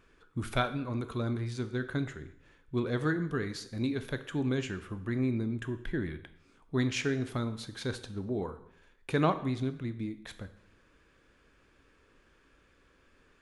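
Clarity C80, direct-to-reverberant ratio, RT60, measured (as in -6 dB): 16.0 dB, 10.0 dB, 0.70 s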